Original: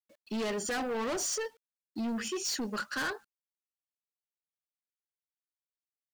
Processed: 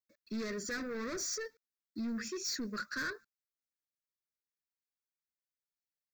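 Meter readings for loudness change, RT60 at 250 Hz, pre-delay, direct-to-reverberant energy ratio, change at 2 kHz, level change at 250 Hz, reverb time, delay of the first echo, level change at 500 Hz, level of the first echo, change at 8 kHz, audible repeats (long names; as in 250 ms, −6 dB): −4.5 dB, no reverb audible, no reverb audible, no reverb audible, −3.0 dB, −3.5 dB, no reverb audible, no echo audible, −6.5 dB, no echo audible, −5.0 dB, no echo audible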